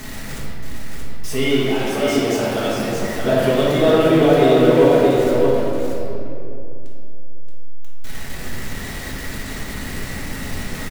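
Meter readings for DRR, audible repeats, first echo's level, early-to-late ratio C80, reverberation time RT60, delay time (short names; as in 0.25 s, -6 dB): -9.0 dB, 1, -3.5 dB, -2.5 dB, 2.8 s, 0.626 s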